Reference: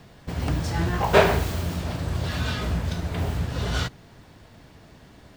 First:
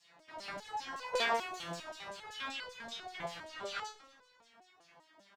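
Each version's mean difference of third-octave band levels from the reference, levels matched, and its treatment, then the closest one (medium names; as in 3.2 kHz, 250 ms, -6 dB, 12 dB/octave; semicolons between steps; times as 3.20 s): 10.5 dB: high-pass 58 Hz; LFO band-pass saw down 5.2 Hz 590–7500 Hz; frequency-shifting echo 122 ms, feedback 58%, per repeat -78 Hz, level -18 dB; resonator arpeggio 5 Hz 170–500 Hz; trim +12 dB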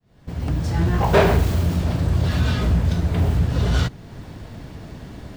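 4.0 dB: fade-in on the opening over 1.08 s; bass shelf 440 Hz +8 dB; in parallel at +2 dB: compression, threshold -37 dBFS, peak gain reduction 27 dB; on the sum: saturation -7 dBFS, distortion -18 dB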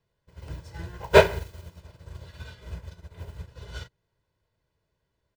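15.5 dB: dynamic bell 1.1 kHz, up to -6 dB, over -45 dBFS, Q 6.6; comb 2 ms, depth 62%; upward expansion 2.5:1, over -31 dBFS; trim +2 dB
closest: second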